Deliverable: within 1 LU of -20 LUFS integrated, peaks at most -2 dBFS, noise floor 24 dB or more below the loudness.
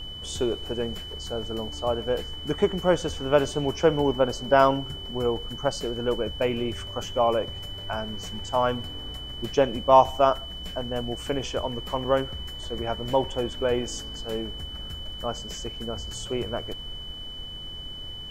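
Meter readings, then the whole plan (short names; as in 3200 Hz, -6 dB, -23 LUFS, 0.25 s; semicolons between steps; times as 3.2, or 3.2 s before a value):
steady tone 3000 Hz; tone level -37 dBFS; noise floor -38 dBFS; noise floor target -51 dBFS; loudness -27.0 LUFS; peak -4.0 dBFS; loudness target -20.0 LUFS
-> notch 3000 Hz, Q 30; noise print and reduce 13 dB; gain +7 dB; limiter -2 dBFS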